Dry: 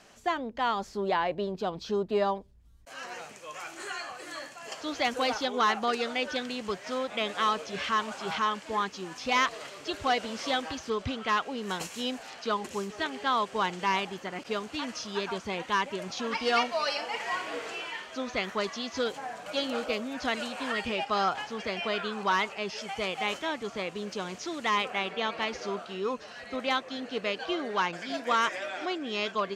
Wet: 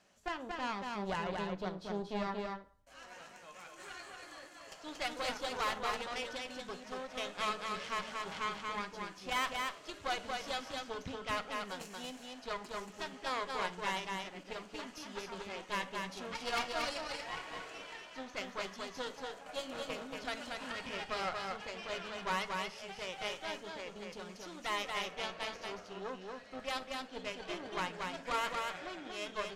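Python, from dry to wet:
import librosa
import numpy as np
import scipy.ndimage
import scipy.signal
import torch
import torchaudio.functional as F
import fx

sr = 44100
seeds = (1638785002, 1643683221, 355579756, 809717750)

y = fx.cheby_harmonics(x, sr, harmonics=(3, 6), levels_db=(-15, -19), full_scale_db=-12.5)
y = y + 10.0 ** (-3.5 / 20.0) * np.pad(y, (int(232 * sr / 1000.0), 0))[:len(y)]
y = fx.rev_fdn(y, sr, rt60_s=0.51, lf_ratio=1.0, hf_ratio=0.75, size_ms=32.0, drr_db=9.5)
y = y * 10.0 ** (-6.5 / 20.0)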